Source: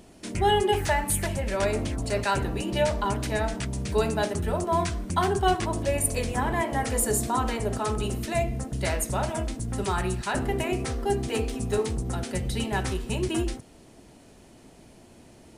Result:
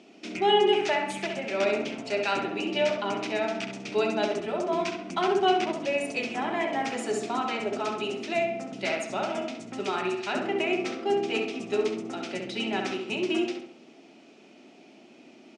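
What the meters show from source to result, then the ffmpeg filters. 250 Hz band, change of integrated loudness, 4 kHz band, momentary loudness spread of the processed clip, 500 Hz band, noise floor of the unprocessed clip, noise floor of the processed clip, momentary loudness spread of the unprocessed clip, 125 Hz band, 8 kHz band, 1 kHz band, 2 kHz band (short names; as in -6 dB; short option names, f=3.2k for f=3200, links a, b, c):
-1.0 dB, -1.0 dB, +2.5 dB, 8 LU, +1.0 dB, -52 dBFS, -53 dBFS, 6 LU, -16.5 dB, -12.0 dB, -1.0 dB, +1.0 dB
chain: -filter_complex "[0:a]highpass=f=240:w=0.5412,highpass=f=240:w=1.3066,equalizer=f=500:t=q:w=4:g=-7,equalizer=f=990:t=q:w=4:g=-9,equalizer=f=1.7k:t=q:w=4:g=-7,equalizer=f=2.5k:t=q:w=4:g=6,equalizer=f=4.3k:t=q:w=4:g=-4,lowpass=f=5.5k:w=0.5412,lowpass=f=5.5k:w=1.3066,asplit=2[a][b];[b]adelay=67,lowpass=f=2.8k:p=1,volume=-4.5dB,asplit=2[c][d];[d]adelay=67,lowpass=f=2.8k:p=1,volume=0.5,asplit=2[e][f];[f]adelay=67,lowpass=f=2.8k:p=1,volume=0.5,asplit=2[g][h];[h]adelay=67,lowpass=f=2.8k:p=1,volume=0.5,asplit=2[i][j];[j]adelay=67,lowpass=f=2.8k:p=1,volume=0.5,asplit=2[k][l];[l]adelay=67,lowpass=f=2.8k:p=1,volume=0.5[m];[c][e][g][i][k][m]amix=inputs=6:normalize=0[n];[a][n]amix=inputs=2:normalize=0,volume=1.5dB"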